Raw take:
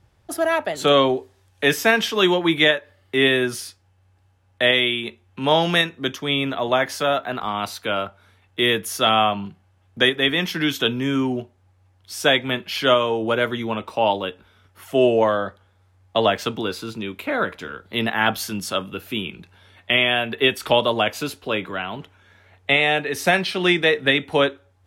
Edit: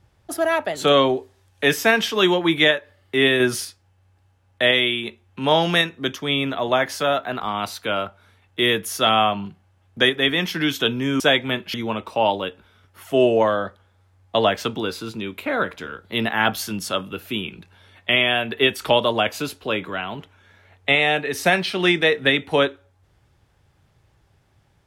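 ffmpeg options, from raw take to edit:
-filter_complex "[0:a]asplit=5[s0][s1][s2][s3][s4];[s0]atrim=end=3.402[s5];[s1]atrim=start=3.398:end=3.652,asetpts=PTS-STARTPTS,volume=1.58[s6];[s2]atrim=start=3.648:end=11.202[s7];[s3]atrim=start=12.198:end=12.742[s8];[s4]atrim=start=13.548[s9];[s5][s6]acrossfade=d=0.004:c1=hsin:c2=hsin[s10];[s10][s7]acrossfade=d=0.004:c1=hsin:c2=hsin[s11];[s11][s8]acrossfade=d=0.004:c1=hsin:c2=hsin[s12];[s12][s9]acrossfade=d=0.004:c1=hsin:c2=hsin"

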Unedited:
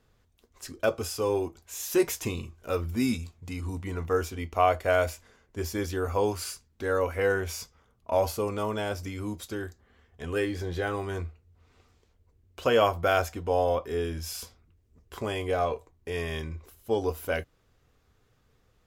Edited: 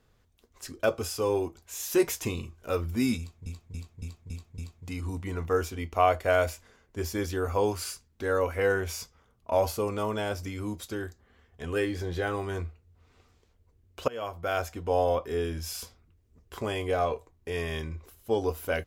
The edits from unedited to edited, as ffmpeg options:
-filter_complex "[0:a]asplit=7[s0][s1][s2][s3][s4][s5][s6];[s0]atrim=end=3.462[s7];[s1]atrim=start=3.178:end=3.462[s8];[s2]atrim=start=3.178:end=3.462[s9];[s3]atrim=start=3.178:end=3.462[s10];[s4]atrim=start=3.178:end=3.462[s11];[s5]atrim=start=3.178:end=12.68,asetpts=PTS-STARTPTS,afade=t=out:st=9.498:d=0.004:c=hsin:silence=0.0707946[s12];[s6]atrim=start=12.68,asetpts=PTS-STARTPTS,afade=t=in:d=0.88:silence=0.0707946[s13];[s7][s8]acrossfade=d=0.004:c1=hsin:c2=hsin[s14];[s14][s9]acrossfade=d=0.004:c1=hsin:c2=hsin[s15];[s15][s10]acrossfade=d=0.004:c1=hsin:c2=hsin[s16];[s16][s11]acrossfade=d=0.004:c1=hsin:c2=hsin[s17];[s12][s13]concat=n=2:v=0:a=1[s18];[s17][s18]acrossfade=d=0.004:c1=hsin:c2=hsin"

